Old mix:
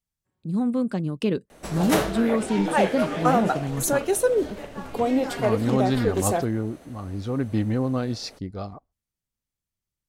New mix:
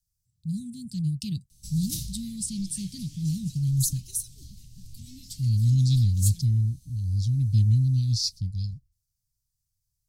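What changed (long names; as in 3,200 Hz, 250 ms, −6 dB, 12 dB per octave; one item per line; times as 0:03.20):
speech +9.0 dB
master: add elliptic band-stop filter 130–4,800 Hz, stop band 60 dB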